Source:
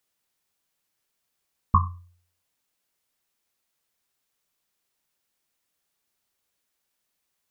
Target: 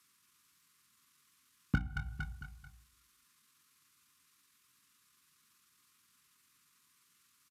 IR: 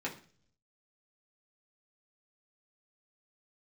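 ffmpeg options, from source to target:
-filter_complex "[0:a]acrossover=split=150[a][b];[b]aeval=exprs='clip(val(0),-1,0.0501)':c=same[c];[a][c]amix=inputs=2:normalize=0,asuperstop=centerf=950:order=4:qfactor=0.63,aecho=1:1:225|450|675|900:0.282|0.116|0.0474|0.0194,asplit=2[d][e];[1:a]atrim=start_sample=2205,asetrate=36162,aresample=44100[f];[e][f]afir=irnorm=-1:irlink=0,volume=-8dB[g];[d][g]amix=inputs=2:normalize=0,acompressor=threshold=-31dB:ratio=12,asetrate=29433,aresample=44100,atempo=1.49831,highpass=69,equalizer=f=1.1k:t=o:w=0.41:g=10.5,bandreject=f=60:t=h:w=6,bandreject=f=120:t=h:w=6,bandreject=f=180:t=h:w=6,bandreject=f=240:t=h:w=6,bandreject=f=300:t=h:w=6,volume=6dB"

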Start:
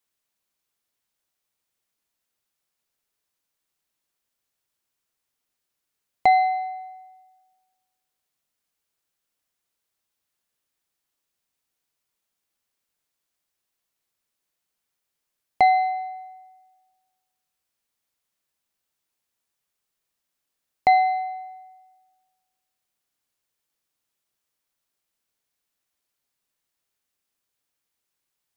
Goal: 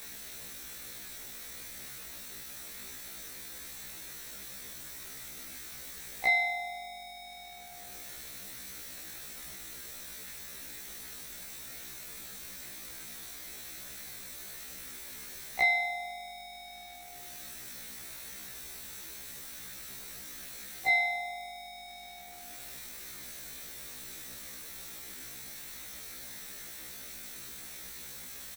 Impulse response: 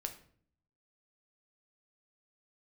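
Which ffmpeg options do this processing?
-filter_complex "[0:a]aeval=exprs='val(0)+0.5*0.0178*sgn(val(0))':c=same,tremolo=f=40:d=0.857,acrossover=split=910[a][b];[a]asoftclip=type=tanh:threshold=-30.5dB[c];[c][b]amix=inputs=2:normalize=0,asplit=2[d][e];[e]adelay=16,volume=-3dB[f];[d][f]amix=inputs=2:normalize=0,aeval=exprs='val(0)+0.000891*(sin(2*PI*50*n/s)+sin(2*PI*2*50*n/s)/2+sin(2*PI*3*50*n/s)/3+sin(2*PI*4*50*n/s)/4+sin(2*PI*5*50*n/s)/5)':c=same,afftfilt=real='re*1.73*eq(mod(b,3),0)':imag='im*1.73*eq(mod(b,3),0)':win_size=2048:overlap=0.75,volume=1dB"

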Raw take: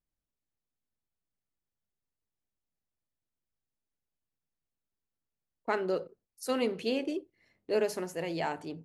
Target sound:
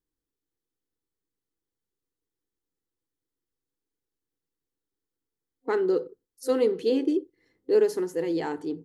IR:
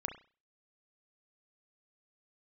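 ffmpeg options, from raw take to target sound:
-af "superequalizer=6b=3.16:7b=2.82:8b=0.447:12b=0.501"

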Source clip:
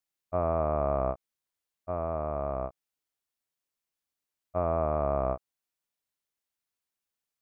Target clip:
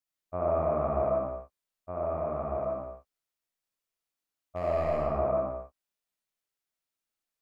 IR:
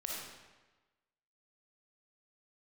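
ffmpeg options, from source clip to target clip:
-filter_complex "[0:a]asettb=1/sr,asplit=3[a][b][c];[a]atrim=end=2.644[d];[b]atrim=start=2.64:end=4.97,asetpts=PTS-STARTPTS,afade=t=in:d=0.004:c=qsin,afade=t=out:st=2.326:d=0.004:c=qsin,volume=20.5dB,asoftclip=hard,volume=-20.5dB[e];[c]atrim=start=4.966[f];[d][e]acrossfade=d=0.004:c1=hsin:c2=qsin[g];[g][f]acrossfade=d=0.004:c1=qsin:c2=hsin[h];[1:a]atrim=start_sample=2205,afade=t=out:st=0.39:d=0.01,atrim=end_sample=17640[i];[h][i]afir=irnorm=-1:irlink=0,volume=-1.5dB"

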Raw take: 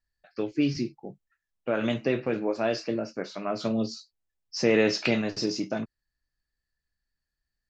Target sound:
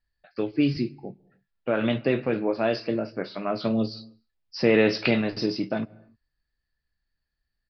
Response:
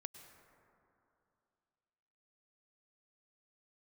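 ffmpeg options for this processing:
-filter_complex "[0:a]asplit=2[a][b];[b]bass=f=250:g=8,treble=f=4k:g=-5[c];[1:a]atrim=start_sample=2205,afade=t=out:st=0.36:d=0.01,atrim=end_sample=16317[d];[c][d]afir=irnorm=-1:irlink=0,volume=-10dB[e];[a][e]amix=inputs=2:normalize=0,aresample=11025,aresample=44100,volume=1dB"

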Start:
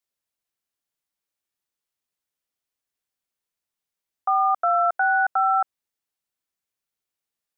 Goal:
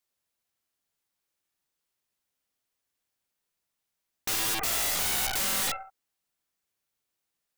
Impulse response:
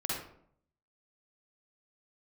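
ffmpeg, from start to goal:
-filter_complex "[0:a]asplit=2[a][b];[1:a]atrim=start_sample=2205,afade=t=out:st=0.32:d=0.01,atrim=end_sample=14553,lowshelf=f=390:g=4.5[c];[b][c]afir=irnorm=-1:irlink=0,volume=-13.5dB[d];[a][d]amix=inputs=2:normalize=0,aeval=exprs='0.282*(cos(1*acos(clip(val(0)/0.282,-1,1)))-cos(1*PI/2))+0.0891*(cos(7*acos(clip(val(0)/0.282,-1,1)))-cos(7*PI/2))+0.112*(cos(8*acos(clip(val(0)/0.282,-1,1)))-cos(8*PI/2))':c=same,aeval=exprs='(mod(12.6*val(0)+1,2)-1)/12.6':c=same"

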